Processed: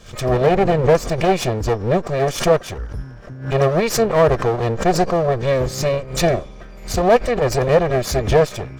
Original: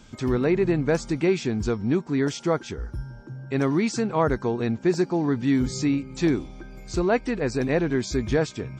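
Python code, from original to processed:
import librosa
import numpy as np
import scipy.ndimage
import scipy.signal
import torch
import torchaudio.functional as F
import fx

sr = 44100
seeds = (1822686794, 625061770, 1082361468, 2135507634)

y = fx.lower_of_two(x, sr, delay_ms=1.7)
y = fx.dynamic_eq(y, sr, hz=560.0, q=0.76, threshold_db=-34.0, ratio=4.0, max_db=6)
y = fx.pre_swell(y, sr, db_per_s=120.0)
y = y * 10.0 ** (4.5 / 20.0)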